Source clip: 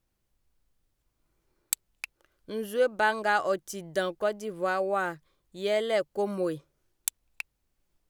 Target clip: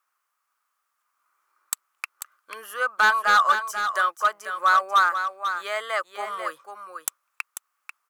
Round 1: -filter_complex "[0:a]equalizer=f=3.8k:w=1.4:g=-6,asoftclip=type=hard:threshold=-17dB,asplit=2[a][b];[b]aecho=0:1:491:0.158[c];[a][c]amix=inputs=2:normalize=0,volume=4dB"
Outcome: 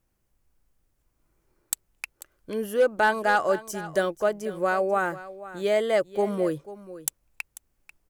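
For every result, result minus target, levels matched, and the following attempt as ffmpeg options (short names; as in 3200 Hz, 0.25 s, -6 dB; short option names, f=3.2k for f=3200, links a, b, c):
echo-to-direct -7.5 dB; 1000 Hz band -4.0 dB
-filter_complex "[0:a]equalizer=f=3.8k:w=1.4:g=-6,asoftclip=type=hard:threshold=-17dB,asplit=2[a][b];[b]aecho=0:1:491:0.376[c];[a][c]amix=inputs=2:normalize=0,volume=4dB"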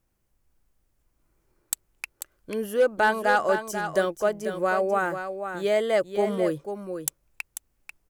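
1000 Hz band -3.5 dB
-filter_complex "[0:a]highpass=f=1.2k:t=q:w=6.2,equalizer=f=3.8k:w=1.4:g=-6,asoftclip=type=hard:threshold=-17dB,asplit=2[a][b];[b]aecho=0:1:491:0.376[c];[a][c]amix=inputs=2:normalize=0,volume=4dB"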